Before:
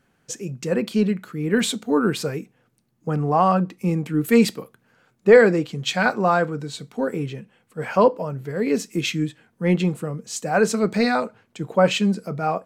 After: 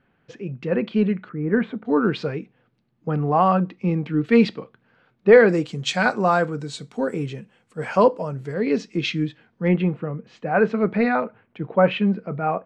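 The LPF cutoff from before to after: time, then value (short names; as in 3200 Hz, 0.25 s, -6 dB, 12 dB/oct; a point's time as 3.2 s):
LPF 24 dB/oct
3200 Hz
from 1.29 s 1800 Hz
from 1.85 s 4000 Hz
from 5.49 s 9000 Hz
from 8.54 s 4800 Hz
from 9.68 s 2700 Hz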